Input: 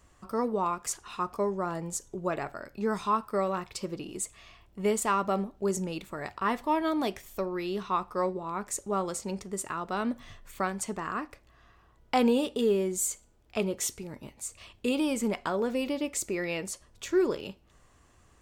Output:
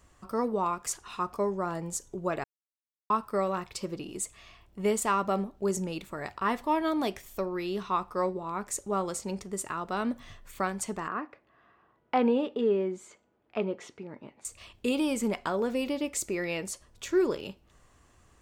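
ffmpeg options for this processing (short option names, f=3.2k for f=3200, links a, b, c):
-filter_complex "[0:a]asettb=1/sr,asplit=3[a][b][c];[a]atrim=end=11.084[d];[b]atrim=start=11.08:end=14.45,asetpts=PTS-STARTPTS,afade=t=in:d=0.004:c=qsin,afade=t=out:st=3.366:d=0.004:c=qsin,highpass=190,lowpass=2.2k[e];[c]atrim=start=14.446[f];[d][e]acrossfade=d=0.004:c1=hsin:c2=qsin[g];[g][f]acrossfade=d=0.004:c1=qsin:c2=hsin,asplit=3[h][i][j];[h]atrim=end=2.44,asetpts=PTS-STARTPTS,afade=t=out:st=2.436:d=0.004:c=hsin[k];[i]atrim=start=2.44:end=3.1,asetpts=PTS-STARTPTS,volume=0[l];[j]atrim=start=3.1,asetpts=PTS-STARTPTS,afade=t=in:d=0.004:c=hsin[m];[k][l][m]concat=n=3:v=0:a=1"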